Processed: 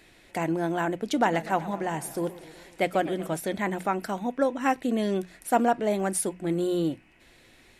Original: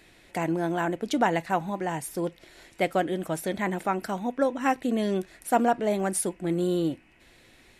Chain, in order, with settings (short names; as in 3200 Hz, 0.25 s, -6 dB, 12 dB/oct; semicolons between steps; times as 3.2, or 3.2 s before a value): notches 60/120/180 Hz; 1.03–3.37 warbling echo 0.122 s, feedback 67%, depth 171 cents, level -17 dB